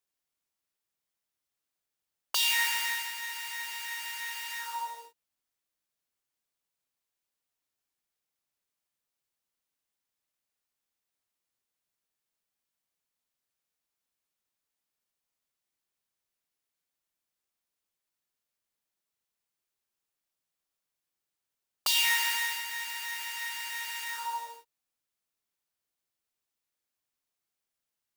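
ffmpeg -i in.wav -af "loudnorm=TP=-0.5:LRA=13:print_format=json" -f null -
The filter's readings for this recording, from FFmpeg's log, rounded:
"input_i" : "-30.3",
"input_tp" : "-13.4",
"input_lra" : "10.6",
"input_thresh" : "-40.6",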